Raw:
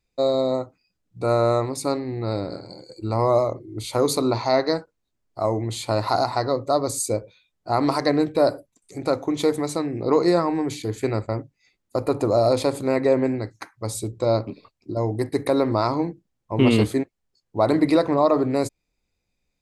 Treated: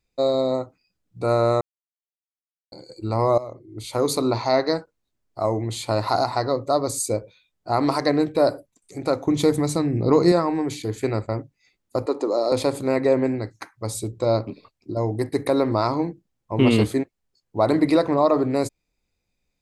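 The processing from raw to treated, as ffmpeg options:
ffmpeg -i in.wav -filter_complex "[0:a]asettb=1/sr,asplit=3[link_01][link_02][link_03];[link_01]atrim=end=9.274[link_04];[link_02]atrim=start=9.27:end=10.32,asetpts=PTS-STARTPTS,afade=type=in:duration=0.004:curve=qsin,afade=type=out:start_time=1.046:duration=0.004:curve=qsin,bass=frequency=250:gain=10,treble=frequency=4000:gain=3[link_05];[link_03]atrim=start=10.316[link_06];[link_04][link_05]acrossfade=duration=0.004:curve1=hsin:curve2=qsin[link_07];[link_07][link_06]acrossfade=duration=0.004:curve1=qsin:curve2=hsin,asettb=1/sr,asplit=3[link_08][link_09][link_10];[link_08]atrim=end=12.064[link_11];[link_09]atrim=start=12.06:end=12.52,asetpts=PTS-STARTPTS,afade=type=in:duration=0.004:curve=qsin,afade=type=out:start_time=0.456:duration=0.004:curve=qsin,highpass=frequency=280:width=0.5412,highpass=frequency=280:width=1.3066,equalizer=frequency=670:width_type=q:width=4:gain=-7,equalizer=frequency=1500:width_type=q:width=4:gain=-6,equalizer=frequency=2500:width_type=q:width=4:gain=-7,lowpass=frequency=7200:width=0.5412,lowpass=frequency=7200:width=1.3066[link_12];[link_10]atrim=start=12.516[link_13];[link_11][link_12]acrossfade=duration=0.004:curve1=hsin:curve2=qsin[link_14];[link_14][link_13]acrossfade=duration=0.004:curve1=qsin:curve2=hsin,asplit=4[link_15][link_16][link_17][link_18];[link_15]atrim=end=1.61,asetpts=PTS-STARTPTS,afade=type=out:start_time=1.606:duration=0.004:curve=hsin[link_19];[link_16]atrim=start=1.61:end=2.72,asetpts=PTS-STARTPTS,volume=0[link_20];[link_17]atrim=start=2.72:end=3.38,asetpts=PTS-STARTPTS,afade=type=in:duration=0.004:curve=hsin,afade=type=out:start_time=0.656:duration=0.004:curve=hsin:silence=0.177828[link_21];[link_18]atrim=start=3.38,asetpts=PTS-STARTPTS,afade=type=in:duration=1.05:curve=qsin:silence=0.177828[link_22];[link_19][link_20][link_21][link_22]concat=n=4:v=0:a=1" out.wav

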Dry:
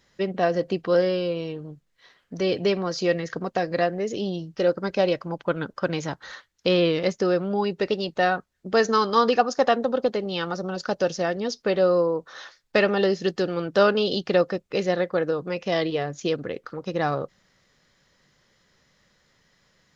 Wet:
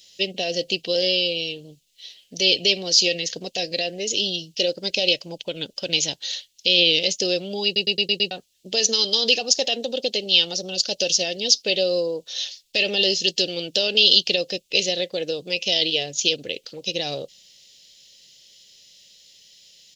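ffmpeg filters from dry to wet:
ffmpeg -i in.wav -filter_complex "[0:a]asplit=7[link_01][link_02][link_03][link_04][link_05][link_06][link_07];[link_01]atrim=end=7.762[link_08];[link_02]atrim=start=7.648:end=7.762[link_09];[link_03]atrim=start=7.648:end=7.762[link_10];[link_04]atrim=start=7.648:end=7.762[link_11];[link_05]atrim=start=7.648:end=7.762[link_12];[link_06]atrim=start=7.648:end=7.762[link_13];[link_07]atrim=start=8.308[link_14];[link_08][link_09]acrossfade=duration=0.004:curve1=hsin:curve2=hsin[link_15];[link_15][link_10]acrossfade=duration=0.004:curve1=hsin:curve2=hsin[link_16];[link_16][link_11]acrossfade=duration=0.004:curve1=hsin:curve2=hsin[link_17];[link_17][link_12]acrossfade=duration=0.004:curve1=hsin:curve2=hsin[link_18];[link_18][link_13]acrossfade=duration=0.004:curve1=hsin:curve2=hsin[link_19];[link_19][link_14]acrossfade=duration=0.004:curve1=hsin:curve2=hsin,lowshelf=frequency=470:gain=-12,alimiter=limit=-18.5dB:level=0:latency=1:release=43,firequalizer=gain_entry='entry(570,0);entry(1200,-24);entry(2800,14)':delay=0.05:min_phase=1,volume=4dB" out.wav

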